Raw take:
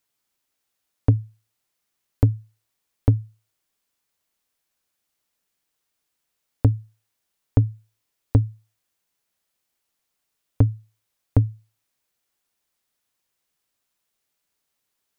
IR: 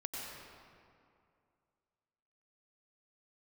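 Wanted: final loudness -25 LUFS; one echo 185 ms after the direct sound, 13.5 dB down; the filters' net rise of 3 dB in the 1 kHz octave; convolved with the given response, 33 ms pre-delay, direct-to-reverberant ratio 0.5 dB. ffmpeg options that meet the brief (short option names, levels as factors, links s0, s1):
-filter_complex "[0:a]equalizer=f=1000:t=o:g=4,aecho=1:1:185:0.211,asplit=2[s0][s1];[1:a]atrim=start_sample=2205,adelay=33[s2];[s1][s2]afir=irnorm=-1:irlink=0,volume=0.841[s3];[s0][s3]amix=inputs=2:normalize=0,volume=1.06"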